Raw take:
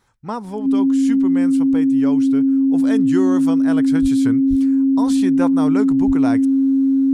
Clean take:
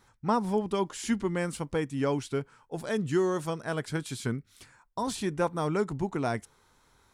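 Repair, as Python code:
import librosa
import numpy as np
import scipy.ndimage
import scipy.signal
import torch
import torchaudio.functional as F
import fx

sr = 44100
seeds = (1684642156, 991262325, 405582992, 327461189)

y = fx.notch(x, sr, hz=270.0, q=30.0)
y = fx.fix_deplosive(y, sr, at_s=(4.01, 4.49, 6.06))
y = fx.fix_level(y, sr, at_s=2.64, step_db=-4.5)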